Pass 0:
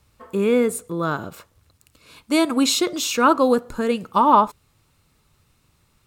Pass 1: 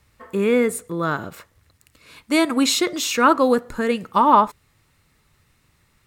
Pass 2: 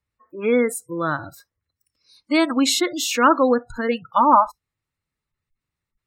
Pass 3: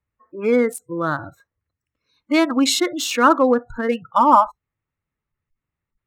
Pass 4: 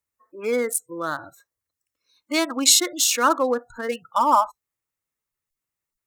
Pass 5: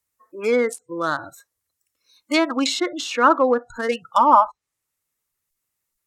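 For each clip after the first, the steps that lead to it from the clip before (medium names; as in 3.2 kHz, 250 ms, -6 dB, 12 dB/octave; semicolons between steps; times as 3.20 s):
peaking EQ 1.9 kHz +8.5 dB 0.43 oct
spectral noise reduction 23 dB; spectral gate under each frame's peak -30 dB strong
local Wiener filter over 9 samples; trim +1.5 dB
tone controls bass -11 dB, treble +14 dB; trim -4.5 dB
treble shelf 5.3 kHz +7 dB; low-pass that closes with the level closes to 1.9 kHz, closed at -16 dBFS; trim +4 dB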